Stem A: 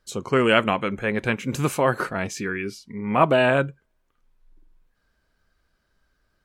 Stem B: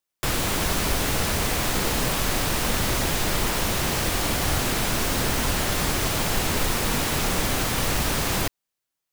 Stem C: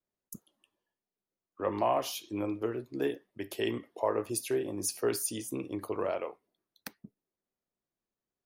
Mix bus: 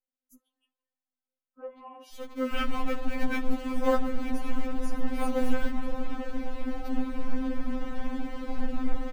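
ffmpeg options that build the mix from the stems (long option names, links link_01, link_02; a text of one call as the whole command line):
ffmpeg -i stem1.wav -i stem2.wav -i stem3.wav -filter_complex "[0:a]acrusher=bits=5:dc=4:mix=0:aa=0.000001,adelay=2050,volume=-6.5dB[link_01];[1:a]alimiter=limit=-18.5dB:level=0:latency=1:release=27,lowpass=frequency=1100:poles=1,lowshelf=frequency=390:gain=10.5,adelay=2300,volume=-6dB[link_02];[2:a]acompressor=threshold=-34dB:ratio=6,volume=-4dB,asplit=2[link_03][link_04];[link_04]apad=whole_len=374738[link_05];[link_01][link_05]sidechaincompress=threshold=-44dB:ratio=8:attack=10:release=249[link_06];[link_06][link_02][link_03]amix=inputs=3:normalize=0,bass=frequency=250:gain=4,treble=frequency=4000:gain=-8,afftfilt=real='re*3.46*eq(mod(b,12),0)':imag='im*3.46*eq(mod(b,12),0)':win_size=2048:overlap=0.75" out.wav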